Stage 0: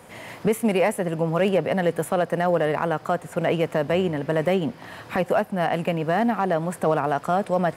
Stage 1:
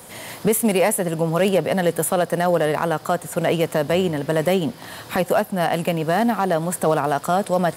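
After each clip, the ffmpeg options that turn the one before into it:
-af "aexciter=amount=1.8:drive=8:freq=3.4k,volume=2.5dB"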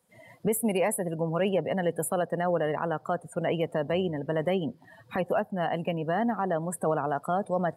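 -af "afftdn=nr=23:nf=-29,volume=-8dB"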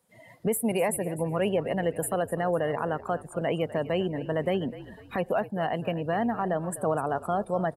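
-filter_complex "[0:a]asplit=4[a][b][c][d];[b]adelay=251,afreqshift=-52,volume=-15.5dB[e];[c]adelay=502,afreqshift=-104,volume=-24.6dB[f];[d]adelay=753,afreqshift=-156,volume=-33.7dB[g];[a][e][f][g]amix=inputs=4:normalize=0"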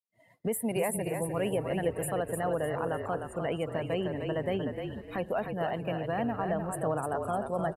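-filter_complex "[0:a]asplit=5[a][b][c][d][e];[b]adelay=303,afreqshift=-38,volume=-5.5dB[f];[c]adelay=606,afreqshift=-76,volume=-15.4dB[g];[d]adelay=909,afreqshift=-114,volume=-25.3dB[h];[e]adelay=1212,afreqshift=-152,volume=-35.2dB[i];[a][f][g][h][i]amix=inputs=5:normalize=0,agate=range=-33dB:threshold=-45dB:ratio=3:detection=peak,volume=-4.5dB"

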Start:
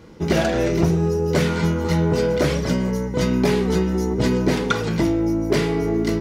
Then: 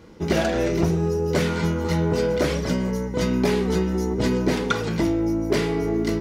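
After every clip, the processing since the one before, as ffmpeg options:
-af "equalizer=f=140:t=o:w=0.25:g=-7,volume=-2dB"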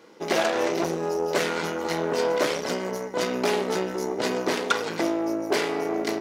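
-af "aeval=exprs='0.422*(cos(1*acos(clip(val(0)/0.422,-1,1)))-cos(1*PI/2))+0.0596*(cos(6*acos(clip(val(0)/0.422,-1,1)))-cos(6*PI/2))':c=same,highpass=390"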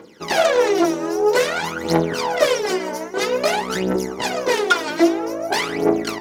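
-af "aphaser=in_gain=1:out_gain=1:delay=3.4:decay=0.78:speed=0.51:type=triangular,volume=2dB"

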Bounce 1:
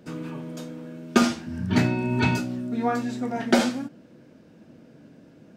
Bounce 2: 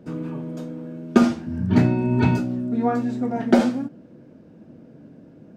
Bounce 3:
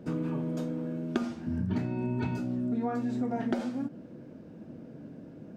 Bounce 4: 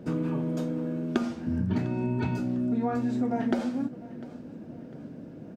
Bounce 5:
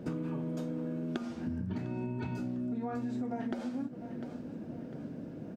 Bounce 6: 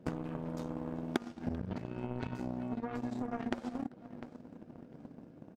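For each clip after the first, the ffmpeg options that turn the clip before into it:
-af "tiltshelf=f=1.3k:g=6.5,volume=-1.5dB"
-af "acompressor=threshold=-27dB:ratio=16"
-af "aecho=1:1:701|1402|2103:0.112|0.0482|0.0207,volume=3dB"
-af "acompressor=threshold=-33dB:ratio=6"
-filter_complex "[0:a]asplit=2[a][b];[b]adelay=390,highpass=300,lowpass=3.4k,asoftclip=type=hard:threshold=-26dB,volume=-11dB[c];[a][c]amix=inputs=2:normalize=0,aeval=exprs='0.141*(cos(1*acos(clip(val(0)/0.141,-1,1)))-cos(1*PI/2))+0.0178*(cos(7*acos(clip(val(0)/0.141,-1,1)))-cos(7*PI/2))':c=same,volume=5dB"

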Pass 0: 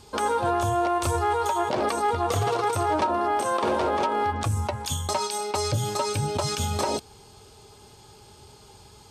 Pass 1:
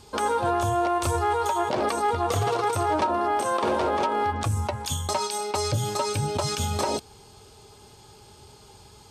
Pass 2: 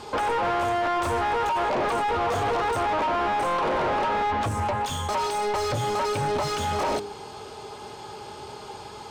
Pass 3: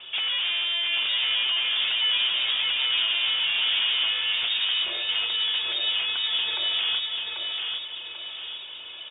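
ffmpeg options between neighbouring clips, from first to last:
-af anull
-filter_complex "[0:a]bandreject=f=102.1:t=h:w=4,bandreject=f=204.2:t=h:w=4,bandreject=f=306.3:t=h:w=4,bandreject=f=408.4:t=h:w=4,asplit=2[a][b];[b]highpass=f=720:p=1,volume=24dB,asoftclip=type=tanh:threshold=-14.5dB[c];[a][c]amix=inputs=2:normalize=0,lowpass=f=1.1k:p=1,volume=-6dB,aeval=exprs='0.178*sin(PI/2*1.58*val(0)/0.178)':c=same,volume=-7dB"
-af "afreqshift=-120,aecho=1:1:790|1580|2370|3160|3950:0.631|0.259|0.106|0.0435|0.0178,lowpass=f=3.1k:t=q:w=0.5098,lowpass=f=3.1k:t=q:w=0.6013,lowpass=f=3.1k:t=q:w=0.9,lowpass=f=3.1k:t=q:w=2.563,afreqshift=-3700,volume=-2dB"

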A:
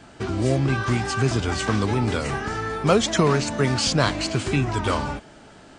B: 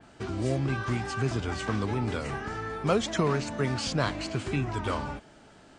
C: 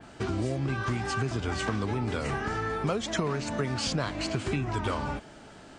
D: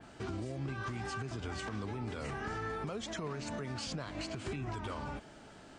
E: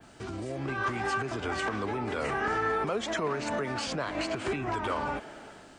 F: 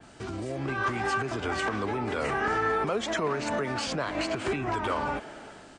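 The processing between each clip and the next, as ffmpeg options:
-af "adynamicequalizer=threshold=0.0126:dfrequency=3400:dqfactor=0.7:tfrequency=3400:tqfactor=0.7:attack=5:release=100:ratio=0.375:range=2.5:mode=cutabove:tftype=highshelf,volume=-7dB"
-af "acompressor=threshold=-31dB:ratio=6,volume=5dB"
-af "alimiter=level_in=1.5dB:limit=-24dB:level=0:latency=1:release=122,volume=-1.5dB,volume=-5dB"
-filter_complex "[0:a]acrossover=split=290|2800[a][b][c];[b]dynaudnorm=f=140:g=7:m=11.5dB[d];[a][d][c]amix=inputs=3:normalize=0,crystalizer=i=1:c=0"
-af "aresample=22050,aresample=44100,volume=2dB"

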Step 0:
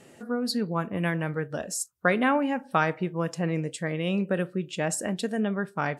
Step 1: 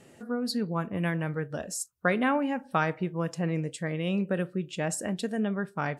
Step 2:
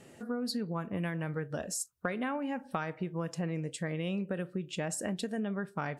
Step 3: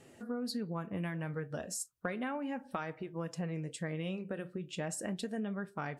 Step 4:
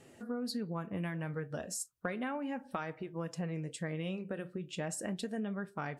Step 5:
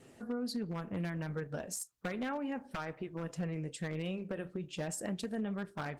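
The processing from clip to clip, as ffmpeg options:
-af "lowshelf=f=120:g=6.5,volume=-3dB"
-af "acompressor=threshold=-31dB:ratio=6"
-af "flanger=delay=2.4:depth=6.1:regen=-70:speed=0.34:shape=triangular,volume=1dB"
-af anull
-af "aeval=exprs='0.0316*(abs(mod(val(0)/0.0316+3,4)-2)-1)':c=same,volume=1dB" -ar 48000 -c:a libopus -b:a 16k

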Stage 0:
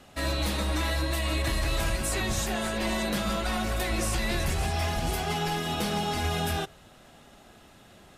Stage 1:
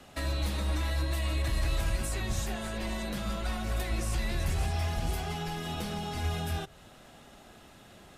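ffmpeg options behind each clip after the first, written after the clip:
-filter_complex "[0:a]acrossover=split=140[a][b];[b]acompressor=threshold=-35dB:ratio=6[c];[a][c]amix=inputs=2:normalize=0"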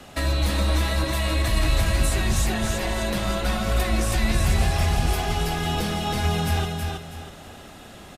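-af "aecho=1:1:322|644|966|1288:0.631|0.196|0.0606|0.0188,volume=8.5dB"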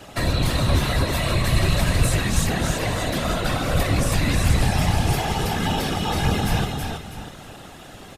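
-af "afftfilt=real='hypot(re,im)*cos(2*PI*random(0))':imag='hypot(re,im)*sin(2*PI*random(1))':win_size=512:overlap=0.75,volume=8dB"

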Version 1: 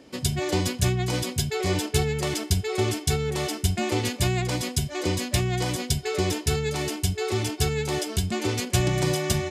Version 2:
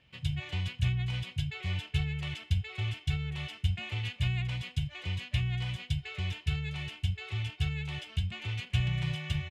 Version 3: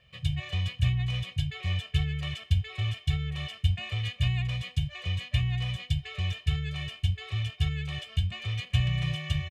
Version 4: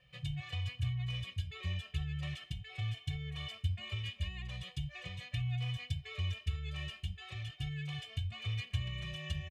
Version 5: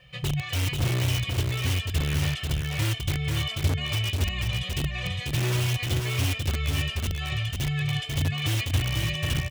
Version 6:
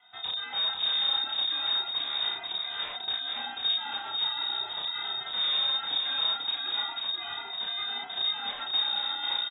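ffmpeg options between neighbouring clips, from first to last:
-af "firequalizer=gain_entry='entry(140,0);entry(260,-25);entry(760,-14);entry(2800,2);entry(4900,-18);entry(12000,-26)':delay=0.05:min_phase=1,volume=-4dB"
-af "aecho=1:1:1.7:0.8"
-filter_complex "[0:a]acompressor=threshold=-33dB:ratio=2,asplit=2[a][b];[b]adelay=3.5,afreqshift=-0.4[c];[a][c]amix=inputs=2:normalize=1,volume=-1.5dB"
-filter_complex "[0:a]asplit=2[a][b];[b]aeval=exprs='(mod(42.2*val(0)+1,2)-1)/42.2':c=same,volume=-3dB[c];[a][c]amix=inputs=2:normalize=0,aecho=1:1:490:0.631,volume=8dB"
-filter_complex "[0:a]asplit=2[a][b];[b]adelay=32,volume=-2.5dB[c];[a][c]amix=inputs=2:normalize=0,lowpass=f=3.2k:t=q:w=0.5098,lowpass=f=3.2k:t=q:w=0.6013,lowpass=f=3.2k:t=q:w=0.9,lowpass=f=3.2k:t=q:w=2.563,afreqshift=-3800,volume=-7dB"

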